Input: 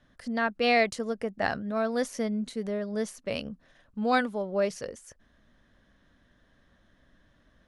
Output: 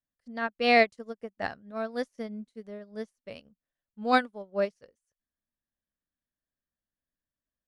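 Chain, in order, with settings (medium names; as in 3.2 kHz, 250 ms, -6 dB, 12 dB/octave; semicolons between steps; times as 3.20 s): upward expansion 2.5:1, over -45 dBFS; trim +3.5 dB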